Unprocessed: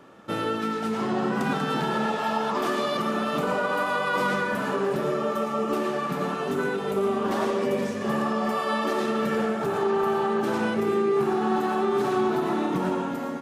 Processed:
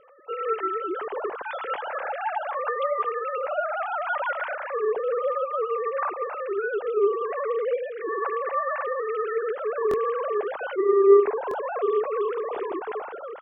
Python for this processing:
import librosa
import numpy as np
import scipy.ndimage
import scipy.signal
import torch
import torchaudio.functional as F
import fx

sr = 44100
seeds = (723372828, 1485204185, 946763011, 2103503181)

y = fx.sine_speech(x, sr)
y = fx.air_absorb(y, sr, metres=150.0)
y = fx.buffer_glitch(y, sr, at_s=(9.89, 11.49), block=1024, repeats=1)